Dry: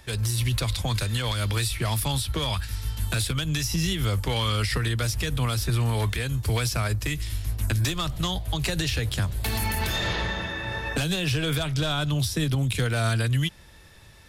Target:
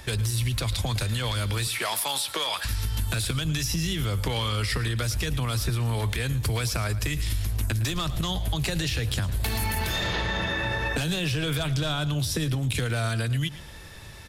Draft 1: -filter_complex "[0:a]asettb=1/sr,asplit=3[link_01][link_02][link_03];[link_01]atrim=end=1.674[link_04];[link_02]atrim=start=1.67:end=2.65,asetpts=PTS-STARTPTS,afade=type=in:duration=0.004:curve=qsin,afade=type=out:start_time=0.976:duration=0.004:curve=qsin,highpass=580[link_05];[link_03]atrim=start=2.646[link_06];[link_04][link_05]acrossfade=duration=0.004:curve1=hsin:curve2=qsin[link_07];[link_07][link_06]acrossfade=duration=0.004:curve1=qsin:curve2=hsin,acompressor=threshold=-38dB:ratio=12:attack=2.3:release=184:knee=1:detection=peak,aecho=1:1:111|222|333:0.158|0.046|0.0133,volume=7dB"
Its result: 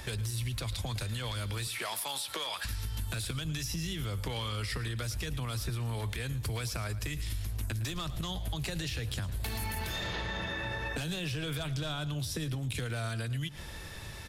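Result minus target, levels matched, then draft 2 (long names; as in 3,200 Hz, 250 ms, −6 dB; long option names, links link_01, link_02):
downward compressor: peak gain reduction +8 dB
-filter_complex "[0:a]asettb=1/sr,asplit=3[link_01][link_02][link_03];[link_01]atrim=end=1.674[link_04];[link_02]atrim=start=1.67:end=2.65,asetpts=PTS-STARTPTS,afade=type=in:duration=0.004:curve=qsin,afade=type=out:start_time=0.976:duration=0.004:curve=qsin,highpass=580[link_05];[link_03]atrim=start=2.646[link_06];[link_04][link_05]acrossfade=duration=0.004:curve1=hsin:curve2=qsin[link_07];[link_07][link_06]acrossfade=duration=0.004:curve1=qsin:curve2=hsin,acompressor=threshold=-29dB:ratio=12:attack=2.3:release=184:knee=1:detection=peak,aecho=1:1:111|222|333:0.158|0.046|0.0133,volume=7dB"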